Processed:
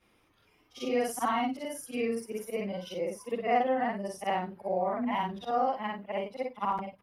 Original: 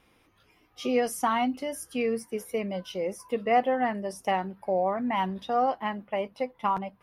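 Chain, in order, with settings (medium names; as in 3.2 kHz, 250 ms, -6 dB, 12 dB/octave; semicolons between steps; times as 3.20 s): short-time spectra conjugated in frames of 131 ms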